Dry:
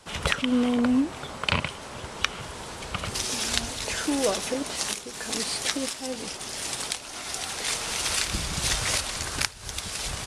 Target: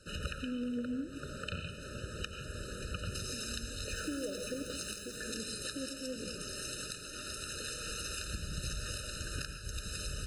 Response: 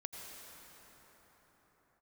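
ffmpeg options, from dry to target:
-filter_complex "[0:a]lowshelf=f=100:g=7.5,acompressor=threshold=-30dB:ratio=8,asettb=1/sr,asplit=3[a][b][c];[a]atrim=end=3.884[d];[b]atrim=start=3.88:end=5.18,asetpts=PTS-STARTPTS,afade=t=in:d=0.004:c=qsin,afade=t=out:st=1.296:d=0.004:c=qsin,acrusher=bits=9:dc=4:mix=0:aa=0.000001[e];[c]atrim=start=5.176[f];[d][e]acrossfade=d=0.004:c1=hsin:c2=qsin[g];[g][f]acrossfade=d=0.004:c1=qsin:c2=hsin[h];[1:a]atrim=start_sample=2205,afade=t=out:st=0.23:d=0.01,atrim=end_sample=10584[i];[h][i]afir=irnorm=-1:irlink=0,afftfilt=real='re*eq(mod(floor(b*sr/1024/610),2),0)':imag='im*eq(mod(floor(b*sr/1024/610),2),0)':win_size=1024:overlap=0.75"

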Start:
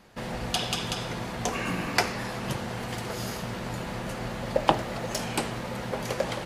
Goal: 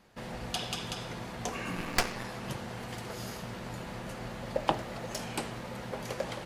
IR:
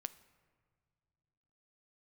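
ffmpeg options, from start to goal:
-filter_complex "[0:a]asettb=1/sr,asplit=3[a][b][c];[a]atrim=end=1.764[d];[b]atrim=start=1.76:end=2.25,asetpts=PTS-STARTPTS,afade=t=in:d=0.004:c=qsin,afade=t=out:st=0.486:d=0.004:c=qsin,aeval=exprs='0.447*(cos(1*acos(clip(val(0)/0.447,-1,1)))-cos(1*PI/2))+0.141*(cos(6*acos(clip(val(0)/0.447,-1,1)))-cos(6*PI/2))':c=same[e];[c]atrim=start=2.246[f];[d][e]acrossfade=d=0.004:c1=hsin:c2=qsin[g];[g][f]acrossfade=d=0.004:c1=qsin:c2=hsin,volume=-6.5dB"

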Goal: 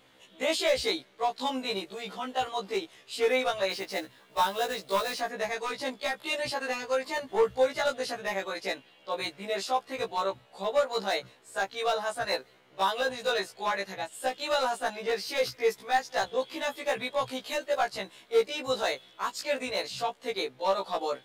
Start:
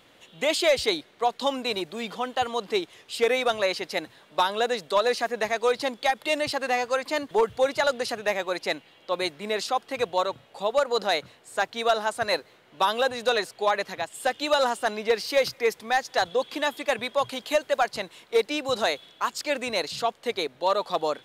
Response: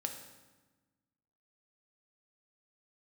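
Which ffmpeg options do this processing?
-filter_complex "[0:a]asplit=3[a][b][c];[a]afade=t=out:st=3.7:d=0.02[d];[b]acrusher=bits=3:mode=log:mix=0:aa=0.000001,afade=t=in:st=3.7:d=0.02,afade=t=out:st=5.2:d=0.02[e];[c]afade=t=in:st=5.2:d=0.02[f];[d][e][f]amix=inputs=3:normalize=0,volume=16.5dB,asoftclip=hard,volume=-16.5dB,afftfilt=real='re*1.73*eq(mod(b,3),0)':imag='im*1.73*eq(mod(b,3),0)':win_size=2048:overlap=0.75,volume=-1.5dB"

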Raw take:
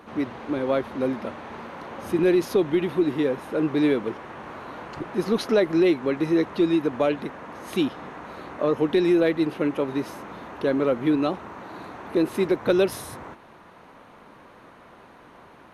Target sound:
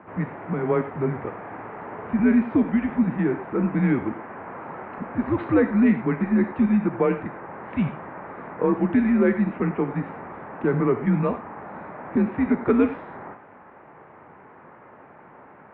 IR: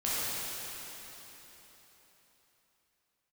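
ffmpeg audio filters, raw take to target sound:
-filter_complex "[0:a]asplit=2[a][b];[b]aemphasis=mode=production:type=bsi[c];[1:a]atrim=start_sample=2205,afade=t=out:st=0.16:d=0.01,atrim=end_sample=7497[d];[c][d]afir=irnorm=-1:irlink=0,volume=-10.5dB[e];[a][e]amix=inputs=2:normalize=0,highpass=f=260:t=q:w=0.5412,highpass=f=260:t=q:w=1.307,lowpass=f=2.3k:t=q:w=0.5176,lowpass=f=2.3k:t=q:w=0.7071,lowpass=f=2.3k:t=q:w=1.932,afreqshift=-120"

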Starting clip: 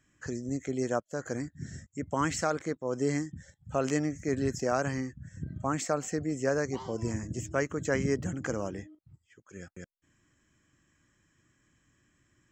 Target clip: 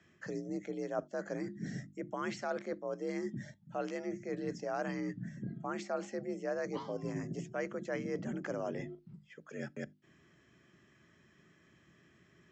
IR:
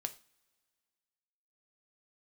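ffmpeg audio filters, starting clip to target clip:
-filter_complex "[0:a]asplit=2[a][b];[1:a]atrim=start_sample=2205,atrim=end_sample=3969[c];[b][c]afir=irnorm=-1:irlink=0,volume=-12dB[d];[a][d]amix=inputs=2:normalize=0,afreqshift=51,areverse,acompressor=threshold=-39dB:ratio=6,areverse,lowpass=f=5.3k:w=0.5412,lowpass=f=5.3k:w=1.3066,equalizer=f=630:w=4.1:g=3.5,bandreject=f=50:t=h:w=6,bandreject=f=100:t=h:w=6,bandreject=f=150:t=h:w=6,bandreject=f=200:t=h:w=6,bandreject=f=250:t=h:w=6,bandreject=f=300:t=h:w=6,bandreject=f=350:t=h:w=6,volume=3.5dB"

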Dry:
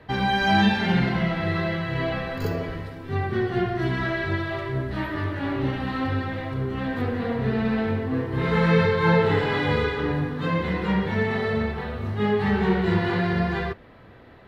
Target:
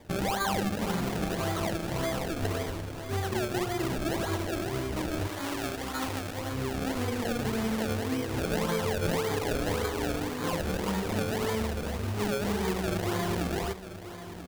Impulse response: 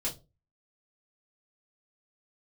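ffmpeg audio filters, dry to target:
-filter_complex "[0:a]equalizer=f=150:t=o:w=0.37:g=-13.5,acrusher=samples=31:mix=1:aa=0.000001:lfo=1:lforange=31:lforate=1.8,asettb=1/sr,asplit=3[a][b][c];[a]atrim=end=5.274[d];[b]atrim=start=5.27:end=6.38,asetpts=PTS-STARTPTS,afade=t=in:d=0.004:c=qsin,afade=t=out:st=1.106:d=0.004:c=qsin,lowshelf=f=480:g=-7.5[e];[c]atrim=start=6.376[f];[d][e]acrossfade=d=0.004:c1=hsin:c2=qsin[g];[g][f]acrossfade=d=0.004:c1=qsin:c2=hsin,acompressor=threshold=-24dB:ratio=6,aecho=1:1:988:0.237,volume=-2dB"

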